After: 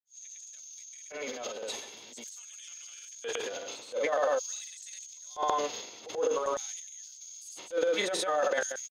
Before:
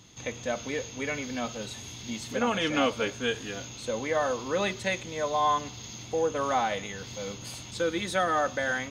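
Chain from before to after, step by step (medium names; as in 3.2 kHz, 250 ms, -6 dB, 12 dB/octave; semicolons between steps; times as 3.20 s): LFO high-pass square 0.46 Hz 480–6900 Hz; granulator, pitch spread up and down by 0 st; transient shaper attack -11 dB, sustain +10 dB; trim -4.5 dB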